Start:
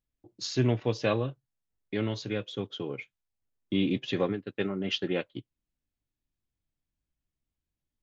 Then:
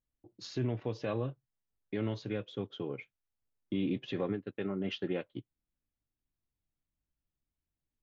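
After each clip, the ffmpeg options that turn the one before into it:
-af "alimiter=limit=-21dB:level=0:latency=1:release=72,lowpass=f=1.9k:p=1,volume=-2.5dB"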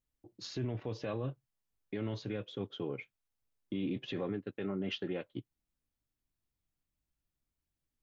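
-af "alimiter=level_in=5dB:limit=-24dB:level=0:latency=1:release=21,volume=-5dB,volume=1dB"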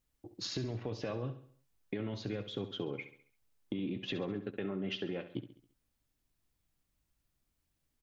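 -filter_complex "[0:a]acompressor=threshold=-41dB:ratio=6,asplit=2[a][b];[b]aecho=0:1:68|136|204|272|340:0.251|0.113|0.0509|0.0229|0.0103[c];[a][c]amix=inputs=2:normalize=0,volume=6.5dB"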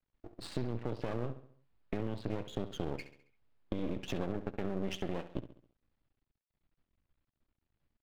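-af "adynamicsmooth=sensitivity=2.5:basefreq=3k,aresample=11025,aresample=44100,aeval=exprs='max(val(0),0)':c=same,volume=4.5dB"

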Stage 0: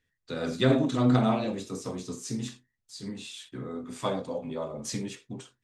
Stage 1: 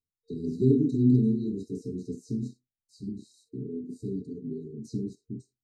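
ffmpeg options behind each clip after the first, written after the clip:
-filter_complex "[0:a]afwtdn=0.0224,afftfilt=real='re*(1-between(b*sr/4096,460,3800))':imag='im*(1-between(b*sr/4096,460,3800))':win_size=4096:overlap=0.75,acrossover=split=5800[a][b];[b]alimiter=level_in=29.5dB:limit=-24dB:level=0:latency=1:release=317,volume=-29.5dB[c];[a][c]amix=inputs=2:normalize=0,volume=2dB"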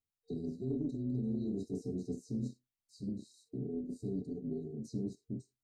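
-af "areverse,acompressor=threshold=-30dB:ratio=16,areverse,tremolo=f=300:d=0.182,volume=-1.5dB"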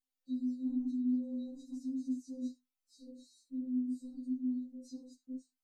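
-af "afftfilt=real='re*3.46*eq(mod(b,12),0)':imag='im*3.46*eq(mod(b,12),0)':win_size=2048:overlap=0.75"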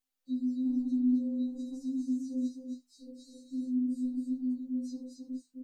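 -af "aecho=1:1:265:0.596,volume=3.5dB"

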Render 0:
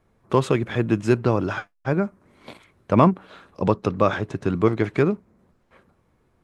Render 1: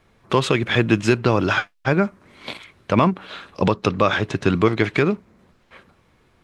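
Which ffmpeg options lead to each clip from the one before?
-af "equalizer=f=3.3k:t=o:w=2.2:g=10,alimiter=limit=-8.5dB:level=0:latency=1:release=200,volume=4.5dB"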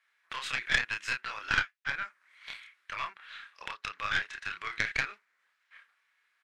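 -filter_complex "[0:a]highpass=f=1.7k:t=q:w=2.6,asplit=2[a][b];[b]adelay=29,volume=-3dB[c];[a][c]amix=inputs=2:normalize=0,aeval=exprs='0.794*(cos(1*acos(clip(val(0)/0.794,-1,1)))-cos(1*PI/2))+0.178*(cos(2*acos(clip(val(0)/0.794,-1,1)))-cos(2*PI/2))+0.178*(cos(3*acos(clip(val(0)/0.794,-1,1)))-cos(3*PI/2))+0.02*(cos(5*acos(clip(val(0)/0.794,-1,1)))-cos(5*PI/2))':c=same,volume=-8dB"

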